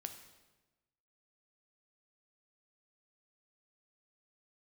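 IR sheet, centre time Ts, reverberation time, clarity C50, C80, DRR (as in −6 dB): 17 ms, 1.1 s, 9.0 dB, 11.0 dB, 6.5 dB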